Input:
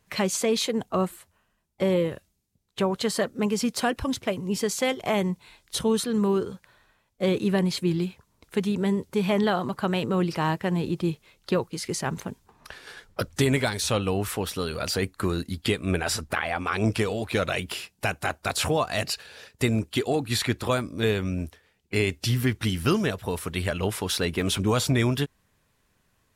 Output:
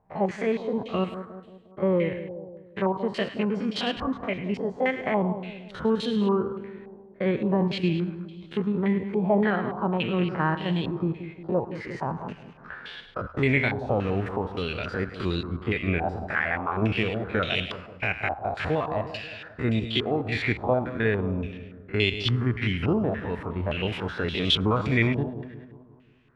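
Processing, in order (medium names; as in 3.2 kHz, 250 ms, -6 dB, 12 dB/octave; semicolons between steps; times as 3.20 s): spectrogram pixelated in time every 50 ms; dynamic bell 1.2 kHz, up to -5 dB, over -39 dBFS, Q 0.84; on a send: two-band feedback delay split 850 Hz, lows 178 ms, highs 104 ms, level -11 dB; on the sum: step-sequenced low-pass 3.5 Hz 800–3300 Hz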